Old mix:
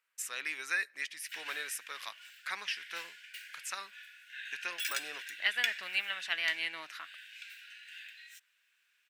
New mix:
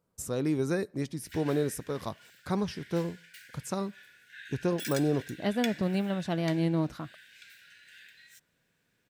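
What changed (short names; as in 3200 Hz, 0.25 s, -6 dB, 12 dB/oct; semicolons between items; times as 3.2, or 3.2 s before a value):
speech: remove resonant high-pass 1800 Hz, resonance Q 3.2; master: add bell 2700 Hz -8.5 dB 0.58 oct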